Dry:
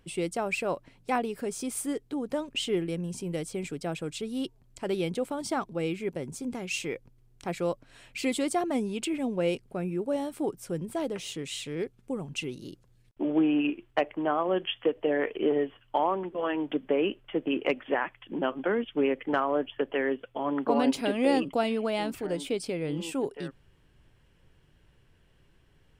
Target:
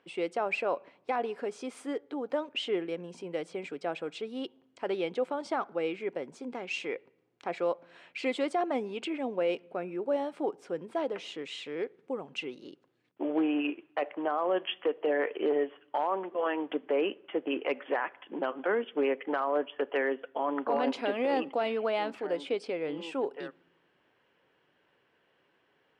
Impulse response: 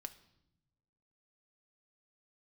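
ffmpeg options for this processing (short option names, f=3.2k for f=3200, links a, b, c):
-filter_complex "[0:a]aeval=exprs='clip(val(0),-1,0.126)':c=same,highpass=430,lowpass=3.4k,asplit=2[a][b];[1:a]atrim=start_sample=2205,lowpass=2.3k[c];[b][c]afir=irnorm=-1:irlink=0,volume=-4.5dB[d];[a][d]amix=inputs=2:normalize=0,alimiter=limit=-20dB:level=0:latency=1:release=14"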